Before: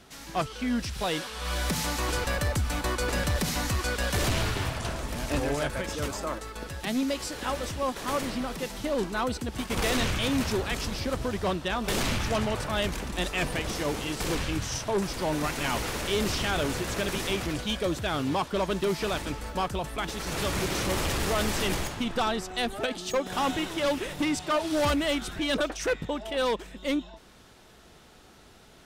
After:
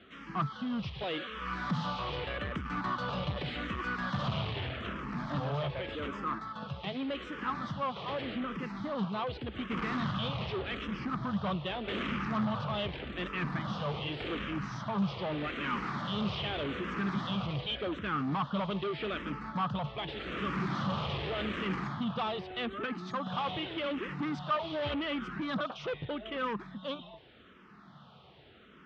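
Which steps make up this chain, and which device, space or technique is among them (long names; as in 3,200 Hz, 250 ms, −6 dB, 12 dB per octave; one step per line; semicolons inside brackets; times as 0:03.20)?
barber-pole phaser into a guitar amplifier (frequency shifter mixed with the dry sound −0.84 Hz; soft clipping −30 dBFS, distortion −11 dB; loudspeaker in its box 84–3,600 Hz, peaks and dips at 140 Hz +9 dB, 200 Hz +8 dB, 1,200 Hz +9 dB, 3,200 Hz +5 dB)
level −1.5 dB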